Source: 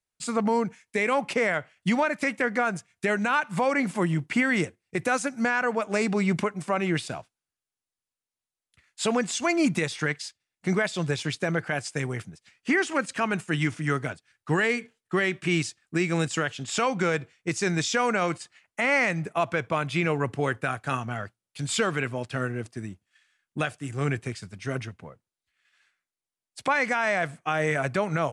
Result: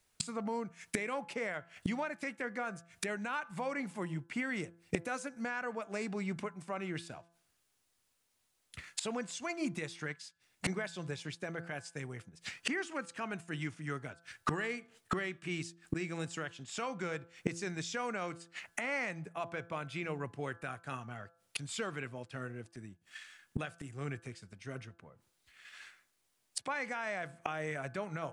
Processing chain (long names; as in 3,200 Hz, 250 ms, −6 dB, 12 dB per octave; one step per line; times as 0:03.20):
gate with flip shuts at −34 dBFS, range −27 dB
hum removal 169.2 Hz, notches 10
level +14 dB